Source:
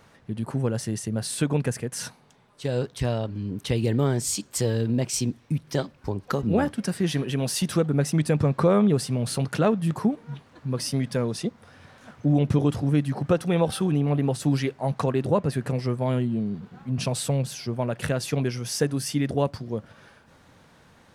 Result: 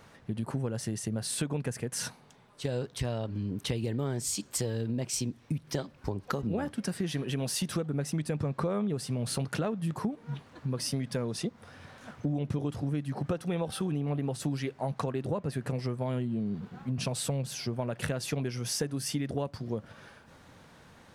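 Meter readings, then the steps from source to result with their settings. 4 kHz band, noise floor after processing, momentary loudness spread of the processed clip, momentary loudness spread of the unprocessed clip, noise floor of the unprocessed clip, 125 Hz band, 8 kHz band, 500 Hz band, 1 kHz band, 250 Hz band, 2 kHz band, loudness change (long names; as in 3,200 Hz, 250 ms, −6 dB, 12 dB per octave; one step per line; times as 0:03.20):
−4.0 dB, −57 dBFS, 6 LU, 9 LU, −56 dBFS, −7.5 dB, −4.0 dB, −8.5 dB, −8.0 dB, −8.0 dB, −6.0 dB, −7.5 dB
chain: downward compressor 5 to 1, threshold −29 dBFS, peak gain reduction 12.5 dB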